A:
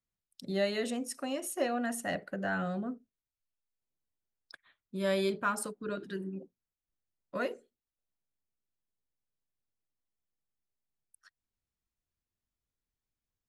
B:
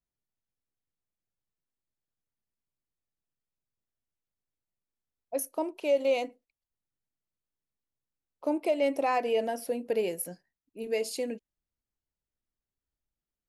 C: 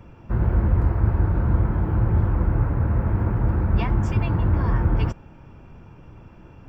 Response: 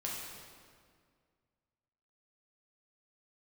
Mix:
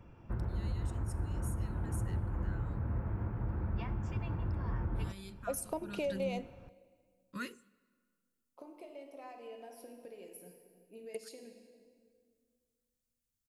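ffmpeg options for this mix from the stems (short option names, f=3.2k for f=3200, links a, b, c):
-filter_complex "[0:a]firequalizer=gain_entry='entry(200,0);entry(700,-30);entry(1100,-5);entry(7700,7)':delay=0.05:min_phase=1,volume=-0.5dB,afade=t=in:st=5.74:d=0.35:silence=0.266073,asplit=3[a][b][c];[b]volume=-24dB[d];[1:a]acompressor=threshold=-38dB:ratio=6,adelay=150,volume=2.5dB,asplit=2[e][f];[f]volume=-17dB[g];[2:a]volume=-11dB,asplit=2[h][i];[i]volume=-20.5dB[j];[c]apad=whole_len=601218[k];[e][k]sidechaingate=range=-19dB:threshold=-58dB:ratio=16:detection=peak[l];[a][h]amix=inputs=2:normalize=0,alimiter=level_in=4dB:limit=-24dB:level=0:latency=1:release=485,volume=-4dB,volume=0dB[m];[3:a]atrim=start_sample=2205[n];[d][g][j]amix=inputs=3:normalize=0[o];[o][n]afir=irnorm=-1:irlink=0[p];[l][m][p]amix=inputs=3:normalize=0"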